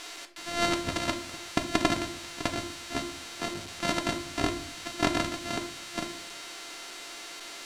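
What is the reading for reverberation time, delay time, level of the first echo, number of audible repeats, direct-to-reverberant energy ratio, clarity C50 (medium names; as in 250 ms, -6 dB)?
0.50 s, no echo, no echo, no echo, 5.0 dB, 14.0 dB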